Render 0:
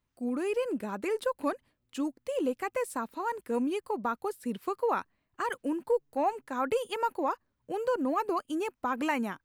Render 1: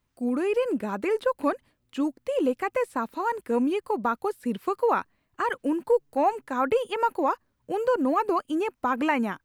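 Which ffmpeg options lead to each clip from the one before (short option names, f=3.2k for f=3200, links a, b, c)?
-filter_complex "[0:a]acrossover=split=3500[a][b];[b]acompressor=threshold=-56dB:ratio=4:attack=1:release=60[c];[a][c]amix=inputs=2:normalize=0,volume=5.5dB"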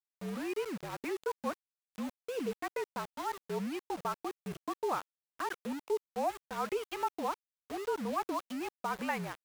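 -af "afreqshift=-53,aeval=exprs='val(0)*gte(abs(val(0)),0.0282)':c=same,lowshelf=f=400:g=-5.5,volume=-8.5dB"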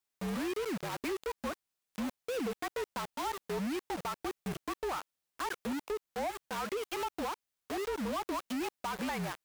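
-af "acompressor=threshold=-34dB:ratio=6,asoftclip=type=tanh:threshold=-40dB,volume=8.5dB"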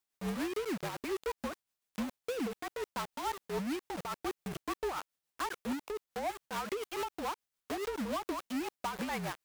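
-af "tremolo=f=7:d=0.49,volume=1.5dB"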